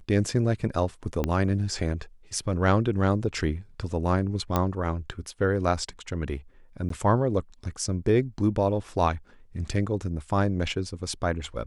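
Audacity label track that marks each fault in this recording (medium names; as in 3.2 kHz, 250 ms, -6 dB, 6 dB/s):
1.240000	1.240000	pop -13 dBFS
4.560000	4.560000	pop -10 dBFS
6.890000	6.900000	dropout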